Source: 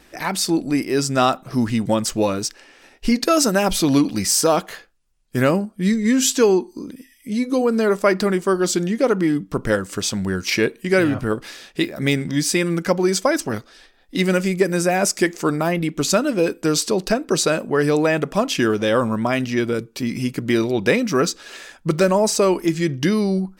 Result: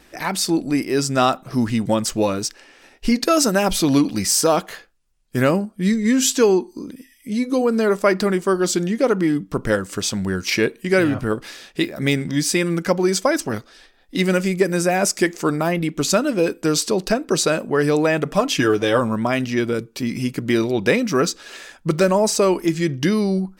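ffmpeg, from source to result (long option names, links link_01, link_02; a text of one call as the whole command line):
ffmpeg -i in.wav -filter_complex "[0:a]asettb=1/sr,asplit=3[link_01][link_02][link_03];[link_01]atrim=end=18.254[link_04];[link_02]atrim=start=18.25:end=18.99,asetpts=PTS-STARTPTS,afade=type=in:duration=0.004:curve=qsin,afade=type=out:start_time=0.736:duration=0.004:curve=qsin,aecho=1:1:6.7:0.59,atrim=end_sample=32634[link_05];[link_03]atrim=start=18.986[link_06];[link_04][link_05]acrossfade=duration=0.004:curve1=hsin:curve2=qsin[link_07];[link_07][link_06]acrossfade=duration=0.004:curve1=qsin:curve2=hsin" out.wav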